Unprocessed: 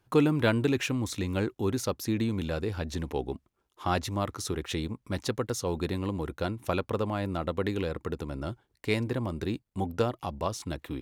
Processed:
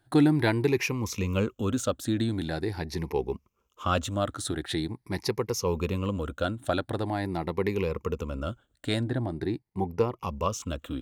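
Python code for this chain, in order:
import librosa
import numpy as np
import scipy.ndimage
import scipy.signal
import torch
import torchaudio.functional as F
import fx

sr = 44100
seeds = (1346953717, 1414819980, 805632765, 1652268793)

y = fx.spec_ripple(x, sr, per_octave=0.81, drift_hz=0.44, depth_db=12)
y = fx.high_shelf(y, sr, hz=2800.0, db=-9.5, at=(9.01, 10.23))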